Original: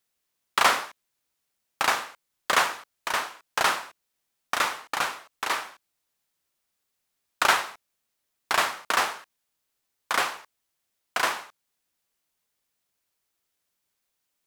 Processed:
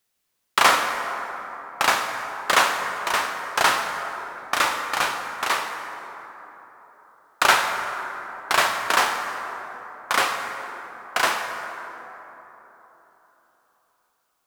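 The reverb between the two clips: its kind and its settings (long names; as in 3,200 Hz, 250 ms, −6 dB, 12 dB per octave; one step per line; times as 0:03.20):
dense smooth reverb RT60 3.9 s, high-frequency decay 0.4×, DRR 4 dB
level +3.5 dB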